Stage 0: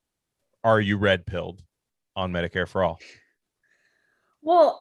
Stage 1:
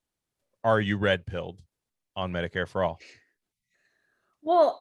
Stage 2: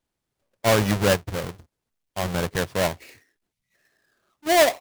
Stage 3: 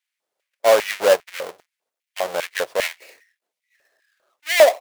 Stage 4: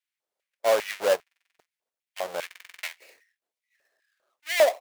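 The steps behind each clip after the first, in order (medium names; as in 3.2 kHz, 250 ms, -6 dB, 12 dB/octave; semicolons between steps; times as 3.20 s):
spectral selection erased 3.52–3.74 s, 250–1900 Hz; trim -3.5 dB
square wave that keeps the level
LFO high-pass square 2.5 Hz 550–2100 Hz
buffer glitch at 1.22/2.46 s, samples 2048, times 7; trim -7.5 dB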